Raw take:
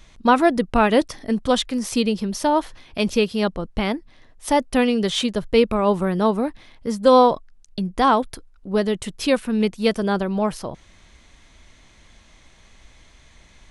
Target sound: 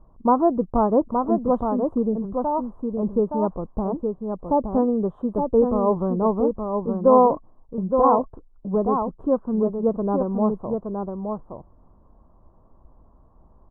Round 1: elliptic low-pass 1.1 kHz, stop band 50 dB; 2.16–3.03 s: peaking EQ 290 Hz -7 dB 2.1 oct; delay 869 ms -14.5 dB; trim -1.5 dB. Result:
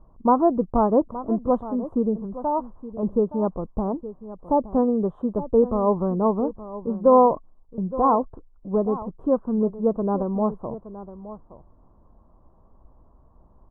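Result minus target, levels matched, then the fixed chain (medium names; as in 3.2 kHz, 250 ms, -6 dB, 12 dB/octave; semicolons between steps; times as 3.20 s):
echo-to-direct -9.5 dB
elliptic low-pass 1.1 kHz, stop band 50 dB; 2.16–3.03 s: peaking EQ 290 Hz -7 dB 2.1 oct; delay 869 ms -5 dB; trim -1.5 dB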